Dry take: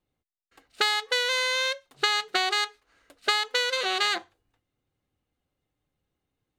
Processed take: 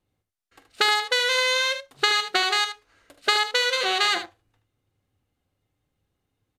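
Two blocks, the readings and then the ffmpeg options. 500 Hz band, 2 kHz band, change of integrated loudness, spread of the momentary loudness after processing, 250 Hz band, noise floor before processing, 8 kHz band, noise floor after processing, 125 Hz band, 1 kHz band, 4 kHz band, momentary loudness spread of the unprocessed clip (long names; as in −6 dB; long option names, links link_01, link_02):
+3.5 dB, +3.5 dB, +3.5 dB, 7 LU, +3.0 dB, −84 dBFS, +3.5 dB, −80 dBFS, can't be measured, +3.5 dB, +3.5 dB, 5 LU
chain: -filter_complex "[0:a]asplit=2[link_01][link_02];[link_02]acrusher=bits=5:mode=log:mix=0:aa=0.000001,volume=-8dB[link_03];[link_01][link_03]amix=inputs=2:normalize=0,equalizer=frequency=100:width=4.3:gain=8.5,aecho=1:1:45|76:0.188|0.316,aresample=32000,aresample=44100"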